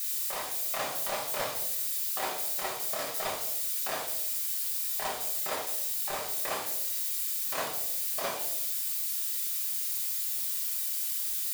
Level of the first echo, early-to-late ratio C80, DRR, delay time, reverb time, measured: none, 9.0 dB, -2.5 dB, none, 0.75 s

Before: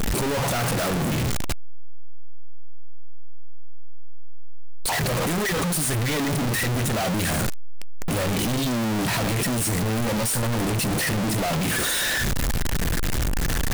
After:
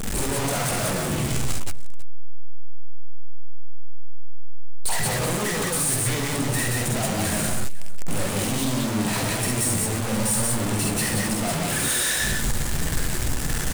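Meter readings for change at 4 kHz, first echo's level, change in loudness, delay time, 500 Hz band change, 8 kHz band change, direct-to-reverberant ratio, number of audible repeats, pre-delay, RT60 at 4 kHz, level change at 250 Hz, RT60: -0.5 dB, -3.5 dB, 0.0 dB, 48 ms, -1.5 dB, +4.0 dB, none, 3, none, none, -1.0 dB, none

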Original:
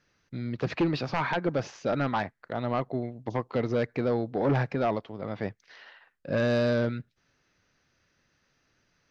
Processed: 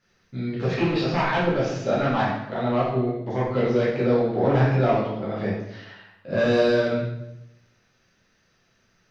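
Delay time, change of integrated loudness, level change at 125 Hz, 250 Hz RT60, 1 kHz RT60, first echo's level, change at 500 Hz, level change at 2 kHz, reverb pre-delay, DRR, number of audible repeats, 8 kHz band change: none, +6.0 dB, +6.5 dB, 1.0 s, 0.80 s, none, +7.0 dB, +5.5 dB, 8 ms, -8.5 dB, none, n/a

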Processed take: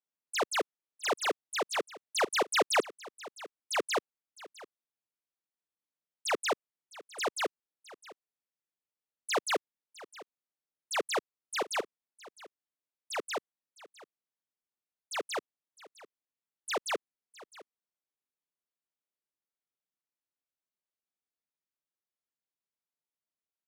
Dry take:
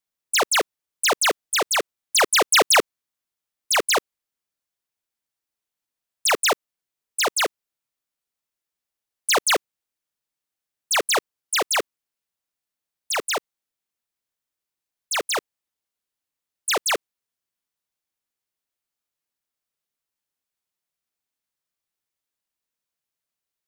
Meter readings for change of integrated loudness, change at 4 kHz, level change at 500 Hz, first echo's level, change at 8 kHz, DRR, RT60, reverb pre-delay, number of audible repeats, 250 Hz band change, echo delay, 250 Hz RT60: -12.0 dB, -13.5 dB, -8.0 dB, -19.0 dB, -16.0 dB, none, none, none, 1, -7.0 dB, 0.659 s, none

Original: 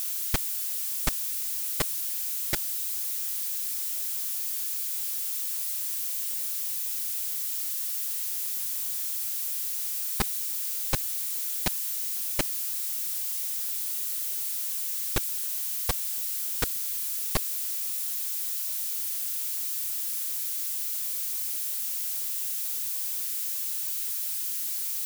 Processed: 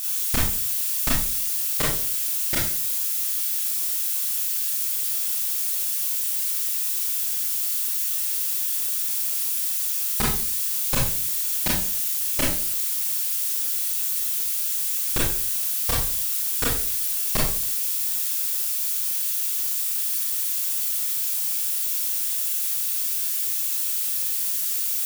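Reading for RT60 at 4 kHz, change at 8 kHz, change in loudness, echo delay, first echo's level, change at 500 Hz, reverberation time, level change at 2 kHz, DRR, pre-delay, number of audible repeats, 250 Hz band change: 0.40 s, +6.0 dB, +6.0 dB, none, none, +6.0 dB, 0.45 s, +6.5 dB, -5.0 dB, 26 ms, none, +8.0 dB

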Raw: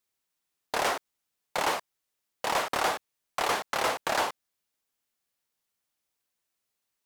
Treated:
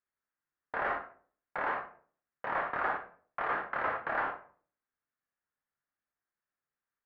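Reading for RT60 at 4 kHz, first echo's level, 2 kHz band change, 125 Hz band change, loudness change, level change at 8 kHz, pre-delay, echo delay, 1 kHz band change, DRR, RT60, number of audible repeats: 0.30 s, none, -2.0 dB, -5.5 dB, -5.0 dB, under -40 dB, 12 ms, none, -4.5 dB, 3.0 dB, 0.45 s, none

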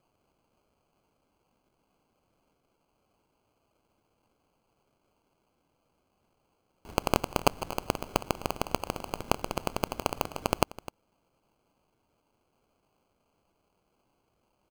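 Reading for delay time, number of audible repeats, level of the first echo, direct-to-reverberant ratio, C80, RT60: 0.256 s, 1, -17.5 dB, none, none, none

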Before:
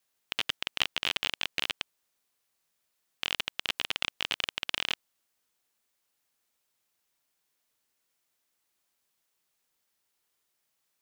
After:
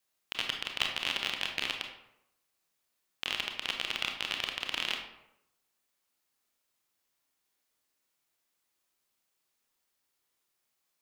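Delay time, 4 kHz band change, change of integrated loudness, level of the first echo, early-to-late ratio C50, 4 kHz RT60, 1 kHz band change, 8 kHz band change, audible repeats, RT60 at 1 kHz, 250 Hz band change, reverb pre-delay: none, -2.0 dB, -1.5 dB, none, 5.5 dB, 0.50 s, -0.5 dB, -2.0 dB, none, 0.80 s, 0.0 dB, 25 ms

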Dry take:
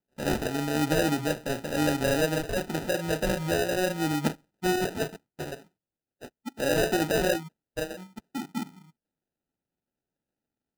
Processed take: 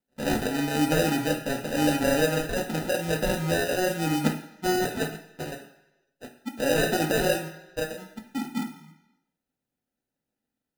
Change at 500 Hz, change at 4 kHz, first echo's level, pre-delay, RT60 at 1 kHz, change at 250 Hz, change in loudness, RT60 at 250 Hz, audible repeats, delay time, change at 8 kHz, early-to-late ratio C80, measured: +1.5 dB, +2.0 dB, none, 3 ms, 1.0 s, +2.0 dB, +1.5 dB, 0.90 s, none, none, +2.0 dB, 12.5 dB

